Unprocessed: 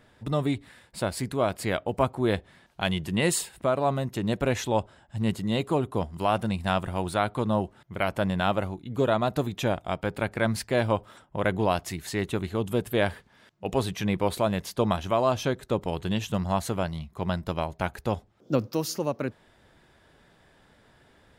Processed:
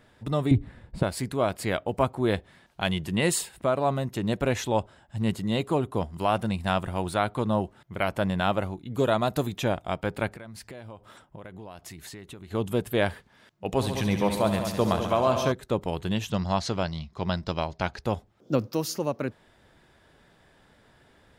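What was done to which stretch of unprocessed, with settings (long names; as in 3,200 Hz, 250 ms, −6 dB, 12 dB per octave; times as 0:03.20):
0:00.51–0:01.03: spectral tilt −4.5 dB per octave
0:08.95–0:09.58: high-shelf EQ 5,300 Hz +7.5 dB
0:10.34–0:12.51: downward compressor 8 to 1, threshold −39 dBFS
0:13.66–0:15.52: echo machine with several playback heads 69 ms, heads all three, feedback 42%, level −11 dB
0:16.30–0:18.02: low-pass with resonance 5,100 Hz, resonance Q 3.1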